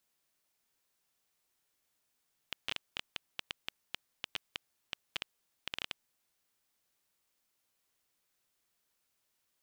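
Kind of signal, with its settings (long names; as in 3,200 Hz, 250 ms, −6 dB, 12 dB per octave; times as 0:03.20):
Geiger counter clicks 6.9 per second −17.5 dBFS 3.92 s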